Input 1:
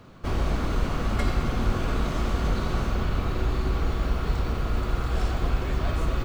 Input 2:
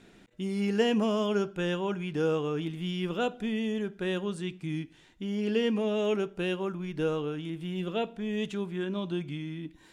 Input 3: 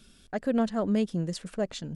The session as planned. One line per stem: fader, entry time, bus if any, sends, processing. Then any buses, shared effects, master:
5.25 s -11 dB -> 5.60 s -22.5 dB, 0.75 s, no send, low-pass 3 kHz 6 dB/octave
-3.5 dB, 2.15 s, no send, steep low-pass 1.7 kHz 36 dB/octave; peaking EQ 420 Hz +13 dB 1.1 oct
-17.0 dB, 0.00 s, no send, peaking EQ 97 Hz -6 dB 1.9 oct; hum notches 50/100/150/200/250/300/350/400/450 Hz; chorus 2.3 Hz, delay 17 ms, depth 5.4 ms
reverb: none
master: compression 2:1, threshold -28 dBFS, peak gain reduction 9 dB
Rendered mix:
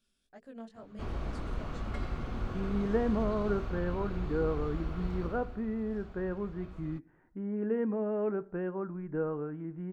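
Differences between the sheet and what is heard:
stem 2: missing peaking EQ 420 Hz +13 dB 1.1 oct; master: missing compression 2:1, threshold -28 dBFS, peak gain reduction 9 dB

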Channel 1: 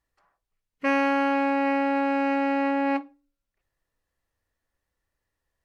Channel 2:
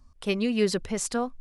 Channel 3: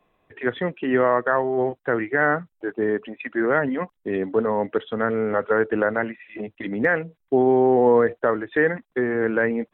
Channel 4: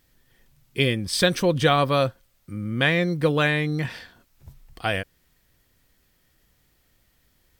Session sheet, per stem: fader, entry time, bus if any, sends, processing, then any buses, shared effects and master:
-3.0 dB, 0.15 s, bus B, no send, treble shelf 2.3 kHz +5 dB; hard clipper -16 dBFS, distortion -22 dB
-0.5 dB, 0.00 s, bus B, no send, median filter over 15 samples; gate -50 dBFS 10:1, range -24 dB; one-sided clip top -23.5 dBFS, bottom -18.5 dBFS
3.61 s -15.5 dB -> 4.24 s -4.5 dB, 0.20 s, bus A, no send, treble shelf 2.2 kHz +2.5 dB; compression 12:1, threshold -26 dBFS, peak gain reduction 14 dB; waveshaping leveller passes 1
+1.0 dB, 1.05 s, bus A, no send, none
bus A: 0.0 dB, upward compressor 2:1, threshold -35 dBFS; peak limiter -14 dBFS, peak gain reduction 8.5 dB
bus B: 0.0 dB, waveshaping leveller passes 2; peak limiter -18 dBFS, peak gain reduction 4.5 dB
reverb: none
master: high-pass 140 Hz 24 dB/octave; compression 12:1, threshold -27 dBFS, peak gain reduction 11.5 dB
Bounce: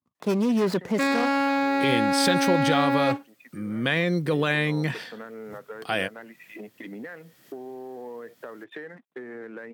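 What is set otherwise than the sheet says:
stem 3 -15.5 dB -> -24.0 dB; master: missing compression 12:1, threshold -27 dBFS, peak gain reduction 11.5 dB

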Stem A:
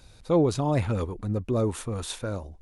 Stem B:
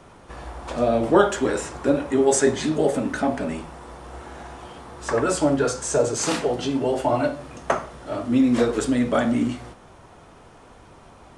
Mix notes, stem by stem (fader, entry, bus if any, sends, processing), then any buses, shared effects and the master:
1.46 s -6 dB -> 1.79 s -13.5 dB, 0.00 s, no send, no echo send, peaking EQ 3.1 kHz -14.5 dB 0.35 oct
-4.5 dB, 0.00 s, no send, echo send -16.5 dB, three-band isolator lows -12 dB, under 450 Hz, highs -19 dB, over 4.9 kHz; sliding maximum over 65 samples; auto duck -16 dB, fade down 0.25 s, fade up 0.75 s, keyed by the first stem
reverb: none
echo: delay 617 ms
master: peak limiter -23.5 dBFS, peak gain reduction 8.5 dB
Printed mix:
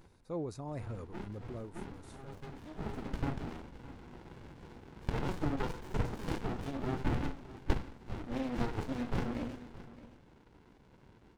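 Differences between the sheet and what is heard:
stem A -6.0 dB -> -16.5 dB; master: missing peak limiter -23.5 dBFS, peak gain reduction 8.5 dB

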